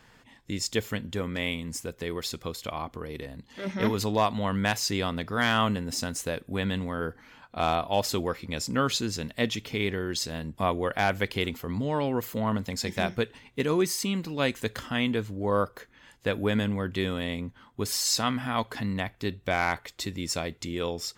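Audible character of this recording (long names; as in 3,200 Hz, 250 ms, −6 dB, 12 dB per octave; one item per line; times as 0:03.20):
background noise floor −59 dBFS
spectral slope −4.0 dB per octave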